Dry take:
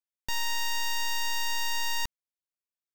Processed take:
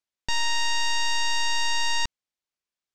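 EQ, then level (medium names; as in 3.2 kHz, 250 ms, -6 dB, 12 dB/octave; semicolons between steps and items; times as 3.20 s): low-pass 9.3 kHz 12 dB/octave; distance through air 67 m; treble shelf 3.8 kHz +6 dB; +5.0 dB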